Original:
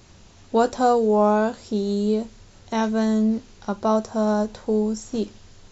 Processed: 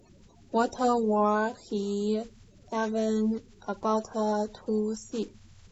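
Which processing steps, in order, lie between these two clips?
bin magnitudes rounded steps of 30 dB; gain -6 dB

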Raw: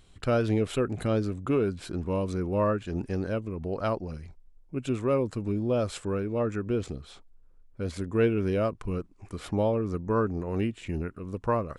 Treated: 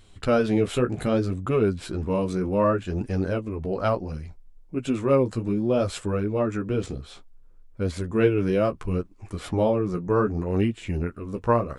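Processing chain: flange 0.65 Hz, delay 8.5 ms, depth 8.7 ms, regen -22%; gain +7.5 dB

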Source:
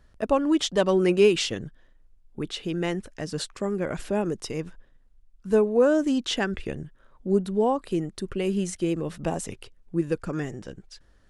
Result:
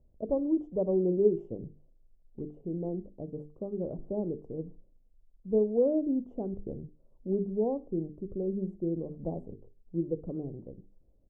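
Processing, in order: crackle 67/s -49 dBFS; inverse Chebyshev low-pass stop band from 1600 Hz, stop band 50 dB; notches 50/100/150/200/250/300/350/400/450 Hz; on a send: feedback echo 61 ms, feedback 35%, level -21.5 dB; on the sum: gain -5 dB

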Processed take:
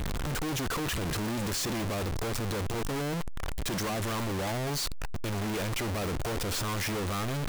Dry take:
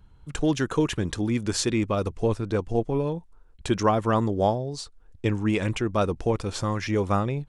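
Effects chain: infinite clipping; gain -5.5 dB

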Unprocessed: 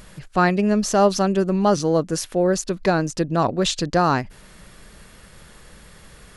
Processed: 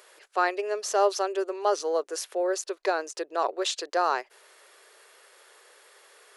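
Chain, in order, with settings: elliptic high-pass 390 Hz, stop band 50 dB; gain -5 dB

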